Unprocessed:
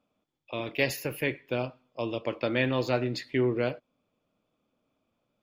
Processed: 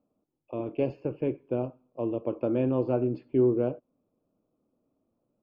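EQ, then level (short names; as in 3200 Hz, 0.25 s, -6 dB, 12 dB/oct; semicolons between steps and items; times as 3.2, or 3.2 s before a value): running mean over 23 samples; air absorption 250 m; bell 340 Hz +5.5 dB 1.1 oct; 0.0 dB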